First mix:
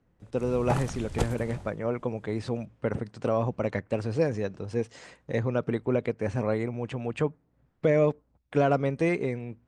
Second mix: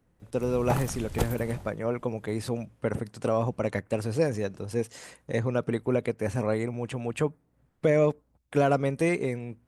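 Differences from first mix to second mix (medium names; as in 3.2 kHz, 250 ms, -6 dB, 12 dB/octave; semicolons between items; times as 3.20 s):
speech: remove distance through air 86 m; master: remove low-pass 9.5 kHz 24 dB/octave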